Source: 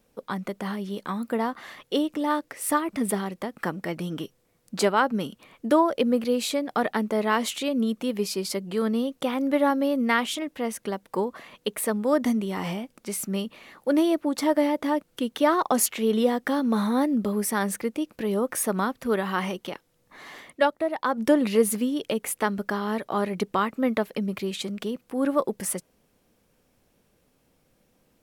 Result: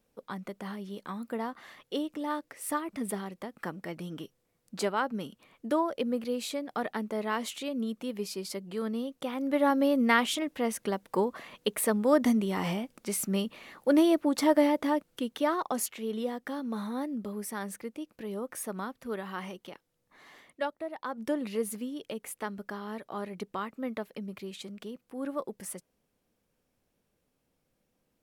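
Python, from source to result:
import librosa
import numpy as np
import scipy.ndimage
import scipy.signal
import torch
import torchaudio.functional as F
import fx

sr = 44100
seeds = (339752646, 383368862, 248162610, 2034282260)

y = fx.gain(x, sr, db=fx.line((9.31, -8.0), (9.81, -1.0), (14.66, -1.0), (16.01, -11.0)))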